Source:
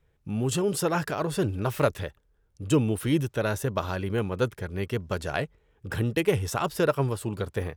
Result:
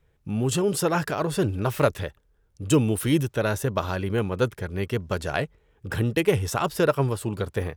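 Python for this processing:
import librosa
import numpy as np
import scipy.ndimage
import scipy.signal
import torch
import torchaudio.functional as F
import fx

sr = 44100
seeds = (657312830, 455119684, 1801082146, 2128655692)

y = fx.high_shelf(x, sr, hz=4800.0, db=5.5, at=(2.68, 3.23))
y = y * 10.0 ** (2.5 / 20.0)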